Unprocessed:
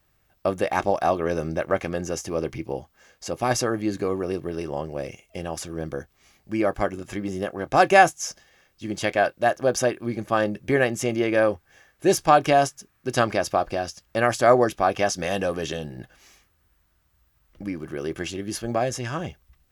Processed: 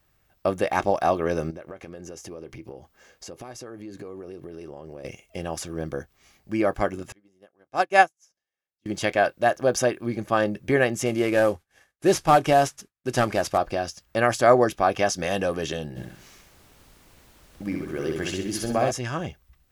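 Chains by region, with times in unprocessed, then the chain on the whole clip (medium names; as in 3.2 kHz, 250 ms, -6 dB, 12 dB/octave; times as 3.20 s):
1.50–5.05 s: compression 12:1, threshold -37 dBFS + peaking EQ 400 Hz +4 dB 0.97 oct
7.12–8.86 s: bass shelf 130 Hz -10.5 dB + upward expansion 2.5:1, over -32 dBFS
11.06–13.58 s: CVSD coder 64 kbps + expander -50 dBFS
15.95–18.90 s: feedback delay 64 ms, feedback 42%, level -3.5 dB + added noise pink -55 dBFS
whole clip: none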